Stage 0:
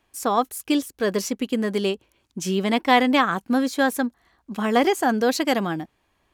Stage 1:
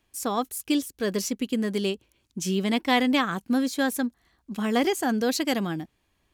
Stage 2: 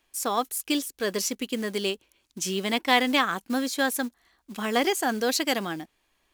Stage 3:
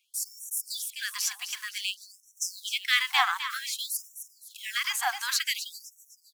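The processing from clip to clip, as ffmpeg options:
ffmpeg -i in.wav -af "equalizer=frequency=900:width_type=o:width=2.6:gain=-7.5" out.wav
ffmpeg -i in.wav -af "acrusher=bits=7:mode=log:mix=0:aa=0.000001,equalizer=frequency=100:width_type=o:width=2.8:gain=-14,volume=3dB" out.wav
ffmpeg -i in.wav -af "aecho=1:1:257|514|771|1028|1285:0.316|0.136|0.0585|0.0251|0.0108,afftfilt=real='re*gte(b*sr/1024,720*pow(5600/720,0.5+0.5*sin(2*PI*0.54*pts/sr)))':imag='im*gte(b*sr/1024,720*pow(5600/720,0.5+0.5*sin(2*PI*0.54*pts/sr)))':win_size=1024:overlap=0.75" out.wav

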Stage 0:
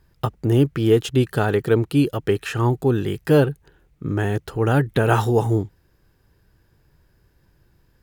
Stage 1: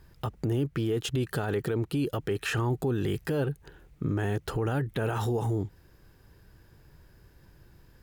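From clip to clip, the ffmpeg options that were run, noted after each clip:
ffmpeg -i in.wav -af "acompressor=threshold=-24dB:ratio=6,alimiter=level_in=0.5dB:limit=-24dB:level=0:latency=1:release=26,volume=-0.5dB,volume=3.5dB" out.wav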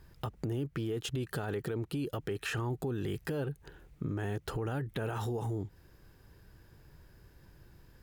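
ffmpeg -i in.wav -af "acompressor=threshold=-34dB:ratio=2,volume=-1.5dB" out.wav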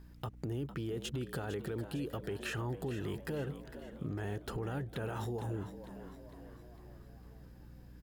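ffmpeg -i in.wav -filter_complex "[0:a]aeval=exprs='val(0)+0.00316*(sin(2*PI*60*n/s)+sin(2*PI*2*60*n/s)/2+sin(2*PI*3*60*n/s)/3+sin(2*PI*4*60*n/s)/4+sin(2*PI*5*60*n/s)/5)':channel_layout=same,asplit=2[link_01][link_02];[link_02]asplit=5[link_03][link_04][link_05][link_06][link_07];[link_03]adelay=454,afreqshift=82,volume=-12dB[link_08];[link_04]adelay=908,afreqshift=164,volume=-17.7dB[link_09];[link_05]adelay=1362,afreqshift=246,volume=-23.4dB[link_10];[link_06]adelay=1816,afreqshift=328,volume=-29dB[link_11];[link_07]adelay=2270,afreqshift=410,volume=-34.7dB[link_12];[link_08][link_09][link_10][link_11][link_12]amix=inputs=5:normalize=0[link_13];[link_01][link_13]amix=inputs=2:normalize=0,volume=-3.5dB" out.wav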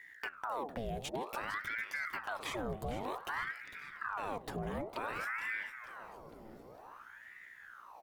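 ffmpeg -i in.wav -af "bandreject=frequency=93.49:width_type=h:width=4,bandreject=frequency=186.98:width_type=h:width=4,bandreject=frequency=280.47:width_type=h:width=4,bandreject=frequency=373.96:width_type=h:width=4,bandreject=frequency=467.45:width_type=h:width=4,bandreject=frequency=560.94:width_type=h:width=4,bandreject=frequency=654.43:width_type=h:width=4,bandreject=frequency=747.92:width_type=h:width=4,bandreject=frequency=841.41:width_type=h:width=4,bandreject=frequency=934.9:width_type=h:width=4,bandreject=frequency=1028.39:width_type=h:width=4,bandreject=frequency=1121.88:width_type=h:width=4,bandreject=frequency=1215.37:width_type=h:width=4,bandreject=frequency=1308.86:width_type=h:width=4,bandreject=frequency=1402.35:width_type=h:width=4,bandreject=frequency=1495.84:width_type=h:width=4,aeval=exprs='val(0)*sin(2*PI*1100*n/s+1100*0.75/0.54*sin(2*PI*0.54*n/s))':channel_layout=same,volume=2dB" out.wav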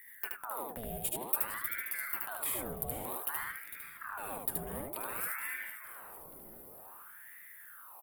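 ffmpeg -i in.wav -af "aexciter=amount=10.6:drive=9.8:freq=9100,aecho=1:1:75:0.708,volume=-4.5dB" out.wav

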